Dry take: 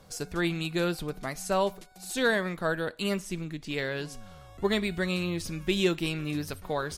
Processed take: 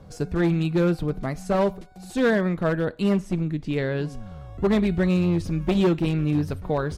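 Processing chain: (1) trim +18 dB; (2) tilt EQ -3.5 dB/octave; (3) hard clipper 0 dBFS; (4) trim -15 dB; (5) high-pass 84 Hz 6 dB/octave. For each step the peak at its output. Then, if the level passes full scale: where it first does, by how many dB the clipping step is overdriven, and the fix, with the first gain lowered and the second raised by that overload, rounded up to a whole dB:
+5.0 dBFS, +10.0 dBFS, 0.0 dBFS, -15.0 dBFS, -10.5 dBFS; step 1, 10.0 dB; step 1 +8 dB, step 4 -5 dB

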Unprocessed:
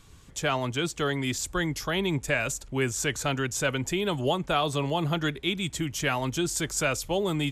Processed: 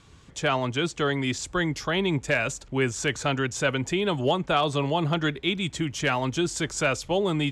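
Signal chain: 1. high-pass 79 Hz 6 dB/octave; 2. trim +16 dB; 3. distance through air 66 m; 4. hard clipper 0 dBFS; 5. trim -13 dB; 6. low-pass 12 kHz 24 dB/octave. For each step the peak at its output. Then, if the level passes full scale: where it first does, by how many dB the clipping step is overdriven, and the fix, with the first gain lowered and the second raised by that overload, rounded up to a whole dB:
-11.5 dBFS, +4.5 dBFS, +4.0 dBFS, 0.0 dBFS, -13.0 dBFS, -12.5 dBFS; step 2, 4.0 dB; step 2 +12 dB, step 5 -9 dB

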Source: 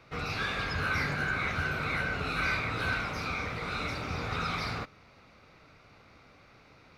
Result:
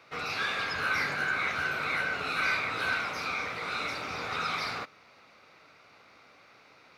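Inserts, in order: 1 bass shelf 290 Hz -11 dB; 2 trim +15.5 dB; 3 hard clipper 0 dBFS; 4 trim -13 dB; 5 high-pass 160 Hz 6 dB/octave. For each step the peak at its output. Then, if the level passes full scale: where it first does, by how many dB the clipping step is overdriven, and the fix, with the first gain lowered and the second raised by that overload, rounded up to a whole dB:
-19.0 dBFS, -3.5 dBFS, -3.5 dBFS, -16.5 dBFS, -16.5 dBFS; nothing clips

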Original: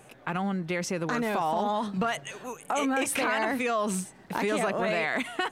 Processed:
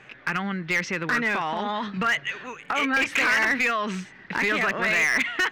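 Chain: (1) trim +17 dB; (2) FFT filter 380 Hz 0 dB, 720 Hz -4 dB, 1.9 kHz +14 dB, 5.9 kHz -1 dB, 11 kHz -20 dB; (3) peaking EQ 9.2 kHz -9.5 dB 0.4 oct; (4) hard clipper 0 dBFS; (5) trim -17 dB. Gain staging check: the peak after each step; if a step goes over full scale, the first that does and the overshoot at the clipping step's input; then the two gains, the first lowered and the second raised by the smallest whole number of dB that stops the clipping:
+2.5 dBFS, +9.5 dBFS, +9.5 dBFS, 0.0 dBFS, -17.0 dBFS; step 1, 9.5 dB; step 1 +7 dB, step 5 -7 dB

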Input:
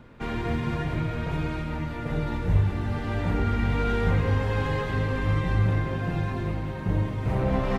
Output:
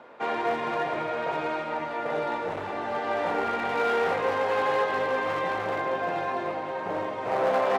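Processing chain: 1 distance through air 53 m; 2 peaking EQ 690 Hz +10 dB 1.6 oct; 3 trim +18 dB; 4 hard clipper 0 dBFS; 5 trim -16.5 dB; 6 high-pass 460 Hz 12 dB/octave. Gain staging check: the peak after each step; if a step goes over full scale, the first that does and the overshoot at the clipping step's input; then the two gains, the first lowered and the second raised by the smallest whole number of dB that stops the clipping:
-10.0 dBFS, -8.5 dBFS, +9.5 dBFS, 0.0 dBFS, -16.5 dBFS, -13.5 dBFS; step 3, 9.5 dB; step 3 +8 dB, step 5 -6.5 dB

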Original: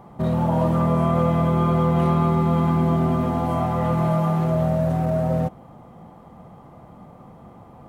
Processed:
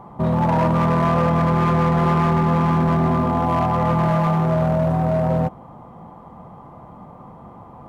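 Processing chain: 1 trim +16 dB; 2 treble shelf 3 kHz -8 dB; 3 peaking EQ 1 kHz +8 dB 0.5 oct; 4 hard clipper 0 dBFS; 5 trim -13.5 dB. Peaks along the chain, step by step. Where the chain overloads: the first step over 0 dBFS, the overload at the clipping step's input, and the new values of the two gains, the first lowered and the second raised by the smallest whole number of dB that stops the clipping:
+7.5 dBFS, +7.0 dBFS, +8.5 dBFS, 0.0 dBFS, -13.5 dBFS; step 1, 8.5 dB; step 1 +7 dB, step 5 -4.5 dB

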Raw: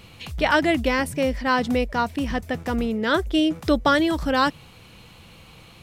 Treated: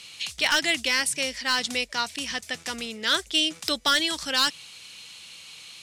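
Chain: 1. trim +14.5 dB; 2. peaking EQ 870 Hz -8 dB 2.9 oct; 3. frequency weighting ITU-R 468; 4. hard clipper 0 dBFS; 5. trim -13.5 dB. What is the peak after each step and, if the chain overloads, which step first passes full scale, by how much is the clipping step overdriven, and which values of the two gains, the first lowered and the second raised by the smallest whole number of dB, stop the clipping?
+8.0 dBFS, +3.0 dBFS, +9.0 dBFS, 0.0 dBFS, -13.5 dBFS; step 1, 9.0 dB; step 1 +5.5 dB, step 5 -4.5 dB

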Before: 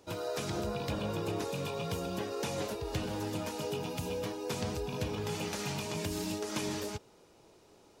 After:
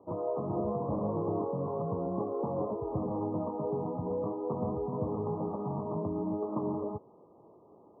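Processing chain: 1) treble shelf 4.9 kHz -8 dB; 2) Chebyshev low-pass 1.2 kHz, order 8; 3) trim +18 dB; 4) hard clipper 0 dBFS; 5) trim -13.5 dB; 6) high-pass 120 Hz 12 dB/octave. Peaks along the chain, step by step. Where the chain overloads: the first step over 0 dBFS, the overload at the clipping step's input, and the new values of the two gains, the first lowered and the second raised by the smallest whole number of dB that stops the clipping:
-22.5 dBFS, -23.5 dBFS, -5.5 dBFS, -5.5 dBFS, -19.0 dBFS, -20.0 dBFS; nothing clips

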